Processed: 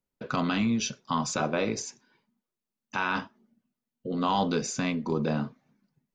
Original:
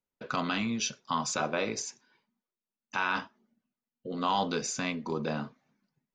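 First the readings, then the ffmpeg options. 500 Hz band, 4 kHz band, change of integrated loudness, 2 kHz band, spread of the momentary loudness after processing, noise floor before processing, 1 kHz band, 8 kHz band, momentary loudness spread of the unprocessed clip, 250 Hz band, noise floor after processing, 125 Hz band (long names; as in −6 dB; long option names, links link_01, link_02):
+3.5 dB, 0.0 dB, +3.0 dB, +0.5 dB, 10 LU, below −85 dBFS, +1.5 dB, 0.0 dB, 10 LU, +6.0 dB, below −85 dBFS, +7.0 dB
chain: -af "lowshelf=frequency=420:gain=8"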